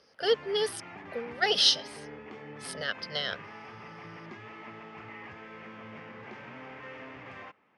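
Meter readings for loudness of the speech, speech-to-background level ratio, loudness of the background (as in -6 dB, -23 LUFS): -27.5 LUFS, 17.5 dB, -45.0 LUFS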